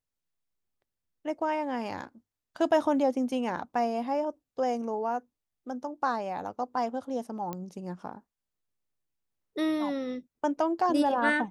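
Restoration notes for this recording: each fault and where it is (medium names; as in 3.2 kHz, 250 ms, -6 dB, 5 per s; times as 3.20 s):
7.53 s: pop -21 dBFS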